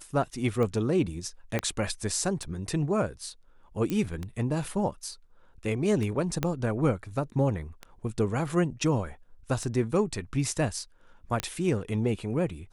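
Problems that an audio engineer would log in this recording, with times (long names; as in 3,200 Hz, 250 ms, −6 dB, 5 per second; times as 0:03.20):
scratch tick 33 1/3 rpm −21 dBFS
0:01.59: click −14 dBFS
0:03.90: click −17 dBFS
0:06.43: click −12 dBFS
0:11.40: click −12 dBFS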